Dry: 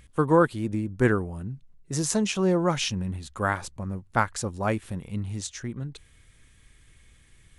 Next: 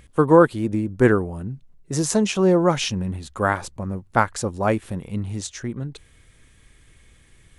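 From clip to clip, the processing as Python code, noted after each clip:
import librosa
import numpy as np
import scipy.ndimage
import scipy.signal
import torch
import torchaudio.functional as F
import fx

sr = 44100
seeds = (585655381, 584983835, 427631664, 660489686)

y = fx.peak_eq(x, sr, hz=480.0, db=4.5, octaves=2.4)
y = y * 10.0 ** (2.5 / 20.0)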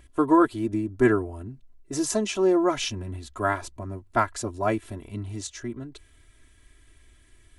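y = x + 0.91 * np.pad(x, (int(3.0 * sr / 1000.0), 0))[:len(x)]
y = y * 10.0 ** (-6.5 / 20.0)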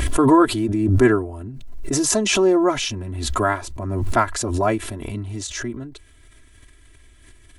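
y = fx.pre_swell(x, sr, db_per_s=36.0)
y = y * 10.0 ** (4.0 / 20.0)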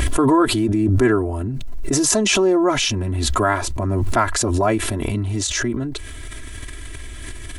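y = fx.env_flatten(x, sr, amount_pct=50)
y = y * 10.0 ** (-2.5 / 20.0)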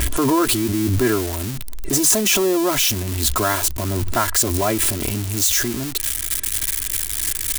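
y = x + 0.5 * 10.0 ** (-10.0 / 20.0) * np.diff(np.sign(x), prepend=np.sign(x[:1]))
y = y * 10.0 ** (-2.5 / 20.0)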